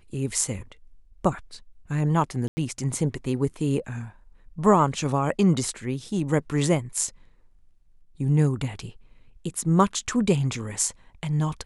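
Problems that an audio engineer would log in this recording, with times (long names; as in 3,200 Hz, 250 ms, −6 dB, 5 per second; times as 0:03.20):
0:02.48–0:02.57: drop-out 90 ms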